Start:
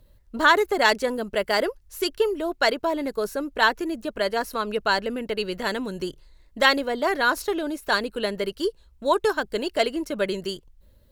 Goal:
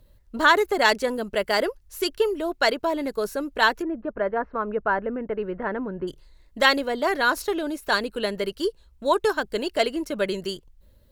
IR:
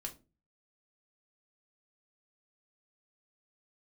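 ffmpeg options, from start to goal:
-filter_complex "[0:a]asplit=3[a][b][c];[a]afade=t=out:st=3.81:d=0.02[d];[b]lowpass=f=1.7k:w=0.5412,lowpass=f=1.7k:w=1.3066,afade=t=in:st=3.81:d=0.02,afade=t=out:st=6.07:d=0.02[e];[c]afade=t=in:st=6.07:d=0.02[f];[d][e][f]amix=inputs=3:normalize=0"

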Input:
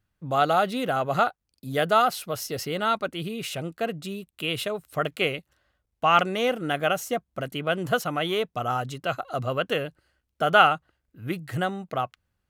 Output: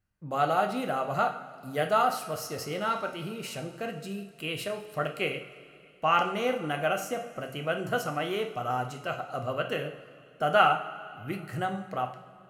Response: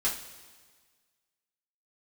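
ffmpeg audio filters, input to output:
-filter_complex "[0:a]equalizer=f=3.5k:w=7.7:g=-12.5,asplit=2[a][b];[1:a]atrim=start_sample=2205,asetrate=25137,aresample=44100[c];[b][c]afir=irnorm=-1:irlink=0,volume=-13dB[d];[a][d]amix=inputs=2:normalize=0,volume=-7.5dB"

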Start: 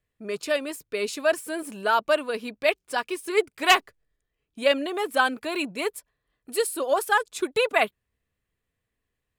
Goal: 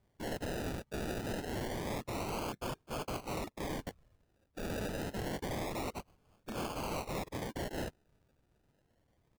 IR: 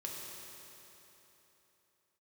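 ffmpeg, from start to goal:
-af "areverse,acompressor=threshold=-29dB:ratio=4,areverse,afftfilt=real='hypot(re,im)*cos(2*PI*random(0))':imag='hypot(re,im)*sin(2*PI*random(1))':win_size=512:overlap=0.75,adynamicequalizer=threshold=0.00224:dfrequency=2800:dqfactor=0.98:tfrequency=2800:tqfactor=0.98:attack=5:release=100:ratio=0.375:range=2:mode=boostabove:tftype=bell,alimiter=level_in=6.5dB:limit=-24dB:level=0:latency=1:release=27,volume=-6.5dB,aresample=16000,aeval=exprs='(mod(141*val(0)+1,2)-1)/141':c=same,aresample=44100,bandreject=f=3.8k:w=8.7,aeval=exprs='(mod(282*val(0)+1,2)-1)/282':c=same,highshelf=f=5.1k:g=2.5,acrusher=samples=32:mix=1:aa=0.000001:lfo=1:lforange=19.2:lforate=0.27,volume=14.5dB"

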